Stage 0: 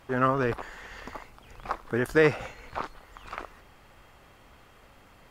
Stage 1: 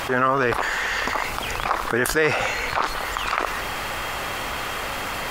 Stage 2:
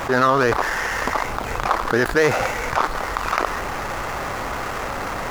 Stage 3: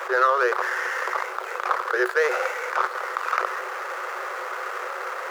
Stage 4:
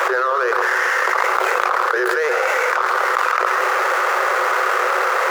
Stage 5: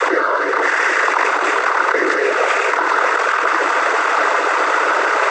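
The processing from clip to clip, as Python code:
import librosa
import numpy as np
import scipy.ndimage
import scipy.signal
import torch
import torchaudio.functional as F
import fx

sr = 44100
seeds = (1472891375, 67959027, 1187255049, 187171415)

y1 = fx.low_shelf(x, sr, hz=440.0, db=-11.5)
y1 = fx.env_flatten(y1, sr, amount_pct=70)
y1 = y1 * 10.0 ** (4.0 / 20.0)
y2 = scipy.ndimage.median_filter(y1, 15, mode='constant')
y2 = y2 * 10.0 ** (4.0 / 20.0)
y3 = scipy.signal.sosfilt(scipy.signal.cheby1(6, 9, 360.0, 'highpass', fs=sr, output='sos'), y2)
y4 = y3 + 10.0 ** (-10.5 / 20.0) * np.pad(y3, (int(132 * sr / 1000.0), 0))[:len(y3)]
y4 = fx.env_flatten(y4, sr, amount_pct=100)
y4 = y4 * 10.0 ** (-2.5 / 20.0)
y5 = fx.noise_vocoder(y4, sr, seeds[0], bands=16)
y5 = y5 + 10.0 ** (-11.0 / 20.0) * np.pad(y5, (int(784 * sr / 1000.0), 0))[:len(y5)]
y5 = y5 * 10.0 ** (2.5 / 20.0)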